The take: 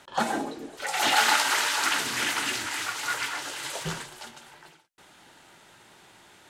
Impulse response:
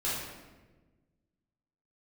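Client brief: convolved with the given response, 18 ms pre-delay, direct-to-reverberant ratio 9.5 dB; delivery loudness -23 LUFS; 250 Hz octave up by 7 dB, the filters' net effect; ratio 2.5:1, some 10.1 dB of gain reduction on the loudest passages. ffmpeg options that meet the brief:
-filter_complex "[0:a]equalizer=f=250:t=o:g=8.5,acompressor=threshold=-33dB:ratio=2.5,asplit=2[a][b];[1:a]atrim=start_sample=2205,adelay=18[c];[b][c]afir=irnorm=-1:irlink=0,volume=-16.5dB[d];[a][d]amix=inputs=2:normalize=0,volume=9.5dB"

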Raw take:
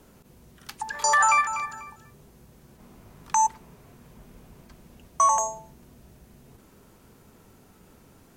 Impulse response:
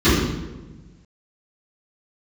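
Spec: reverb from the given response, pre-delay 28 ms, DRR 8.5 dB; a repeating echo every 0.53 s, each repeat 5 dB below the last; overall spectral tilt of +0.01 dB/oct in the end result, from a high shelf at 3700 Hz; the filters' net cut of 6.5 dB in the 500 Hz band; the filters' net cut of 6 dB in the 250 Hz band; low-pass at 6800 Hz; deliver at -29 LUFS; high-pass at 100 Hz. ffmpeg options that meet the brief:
-filter_complex "[0:a]highpass=100,lowpass=6.8k,equalizer=f=250:t=o:g=-6,equalizer=f=500:t=o:g=-8.5,highshelf=f=3.7k:g=3.5,aecho=1:1:530|1060|1590|2120|2650|3180|3710:0.562|0.315|0.176|0.0988|0.0553|0.031|0.0173,asplit=2[a][b];[1:a]atrim=start_sample=2205,adelay=28[c];[b][c]afir=irnorm=-1:irlink=0,volume=-32.5dB[d];[a][d]amix=inputs=2:normalize=0,volume=-2.5dB"

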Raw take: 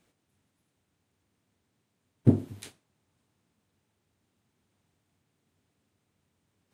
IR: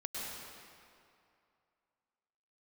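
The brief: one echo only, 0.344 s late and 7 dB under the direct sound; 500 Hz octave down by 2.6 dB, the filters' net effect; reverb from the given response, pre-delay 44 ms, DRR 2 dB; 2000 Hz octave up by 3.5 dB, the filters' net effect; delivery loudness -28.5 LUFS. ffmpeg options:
-filter_complex "[0:a]equalizer=f=500:t=o:g=-4,equalizer=f=2k:t=o:g=4.5,aecho=1:1:344:0.447,asplit=2[a][b];[1:a]atrim=start_sample=2205,adelay=44[c];[b][c]afir=irnorm=-1:irlink=0,volume=-4dB[d];[a][d]amix=inputs=2:normalize=0"

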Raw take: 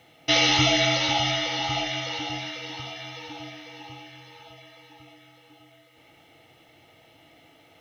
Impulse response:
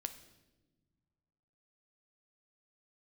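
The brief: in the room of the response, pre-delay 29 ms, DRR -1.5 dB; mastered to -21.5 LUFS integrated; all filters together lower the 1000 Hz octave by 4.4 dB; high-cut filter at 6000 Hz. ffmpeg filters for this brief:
-filter_complex "[0:a]lowpass=6k,equalizer=f=1k:t=o:g=-6,asplit=2[a][b];[1:a]atrim=start_sample=2205,adelay=29[c];[b][c]afir=irnorm=-1:irlink=0,volume=3.5dB[d];[a][d]amix=inputs=2:normalize=0,volume=-1dB"

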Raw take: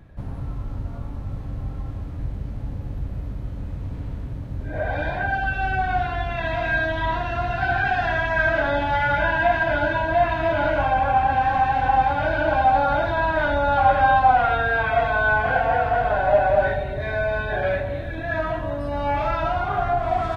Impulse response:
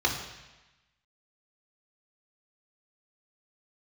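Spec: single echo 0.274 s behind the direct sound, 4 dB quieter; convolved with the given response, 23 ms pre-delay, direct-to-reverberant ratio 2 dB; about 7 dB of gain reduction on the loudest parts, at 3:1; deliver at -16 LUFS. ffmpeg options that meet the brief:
-filter_complex "[0:a]acompressor=threshold=-22dB:ratio=3,aecho=1:1:274:0.631,asplit=2[a][b];[1:a]atrim=start_sample=2205,adelay=23[c];[b][c]afir=irnorm=-1:irlink=0,volume=-14dB[d];[a][d]amix=inputs=2:normalize=0,volume=6.5dB"

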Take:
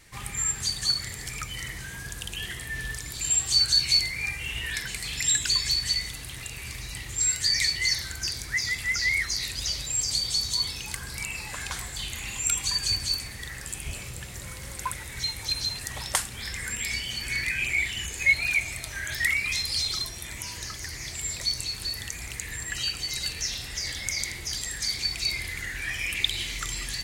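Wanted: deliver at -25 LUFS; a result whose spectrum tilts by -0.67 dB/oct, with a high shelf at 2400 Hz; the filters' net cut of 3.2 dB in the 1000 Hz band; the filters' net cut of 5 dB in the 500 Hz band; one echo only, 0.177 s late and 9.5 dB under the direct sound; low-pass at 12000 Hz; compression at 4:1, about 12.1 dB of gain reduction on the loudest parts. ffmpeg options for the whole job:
-af "lowpass=12k,equalizer=f=500:t=o:g=-6,equalizer=f=1k:t=o:g=-4.5,highshelf=f=2.4k:g=9,acompressor=threshold=-26dB:ratio=4,aecho=1:1:177:0.335,volume=2dB"

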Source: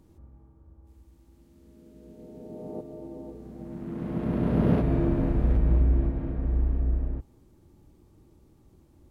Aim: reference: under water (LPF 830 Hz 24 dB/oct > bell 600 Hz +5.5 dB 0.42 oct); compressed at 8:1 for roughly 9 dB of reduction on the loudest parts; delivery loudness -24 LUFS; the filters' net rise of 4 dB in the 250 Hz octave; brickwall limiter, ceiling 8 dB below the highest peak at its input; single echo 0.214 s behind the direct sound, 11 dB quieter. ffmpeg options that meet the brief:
-af "equalizer=f=250:t=o:g=5,acompressor=threshold=-25dB:ratio=8,alimiter=level_in=1dB:limit=-24dB:level=0:latency=1,volume=-1dB,lowpass=f=830:w=0.5412,lowpass=f=830:w=1.3066,equalizer=f=600:t=o:w=0.42:g=5.5,aecho=1:1:214:0.282,volume=10.5dB"

